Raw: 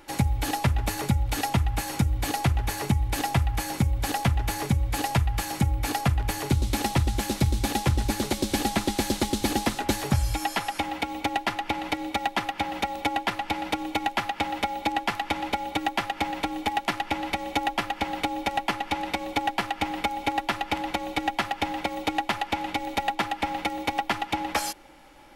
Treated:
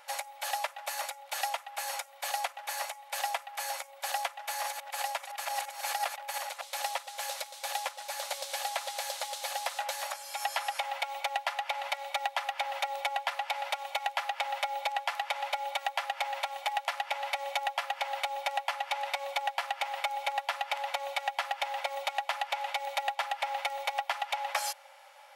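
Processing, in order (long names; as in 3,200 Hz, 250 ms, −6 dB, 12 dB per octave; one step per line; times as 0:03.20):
0:04.30–0:06.63: delay that plays each chunk backwards 339 ms, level −2 dB
downward compressor 4 to 1, threshold −26 dBFS, peak gain reduction 9.5 dB
linear-phase brick-wall high-pass 510 Hz
level −1 dB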